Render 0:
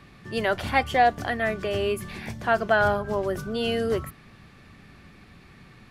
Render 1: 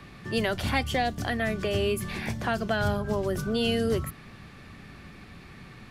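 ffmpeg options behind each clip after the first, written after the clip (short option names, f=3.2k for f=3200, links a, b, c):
-filter_complex "[0:a]acrossover=split=290|3000[a][b][c];[b]acompressor=threshold=-33dB:ratio=4[d];[a][d][c]amix=inputs=3:normalize=0,volume=3.5dB"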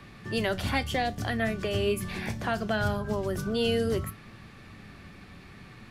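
-af "flanger=delay=8.8:depth=2:regen=78:speed=0.67:shape=sinusoidal,volume=3dB"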